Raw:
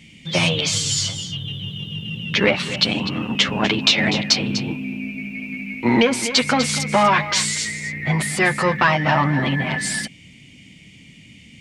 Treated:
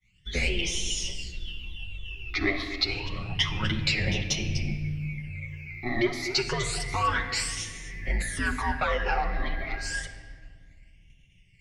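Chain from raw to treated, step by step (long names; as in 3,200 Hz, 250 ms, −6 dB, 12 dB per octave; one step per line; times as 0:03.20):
frequency shifter −110 Hz
downward expander −37 dBFS
all-pass phaser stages 12, 0.29 Hz, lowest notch 150–1,500 Hz
rectangular room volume 3,000 cubic metres, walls mixed, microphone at 1 metre
level −7.5 dB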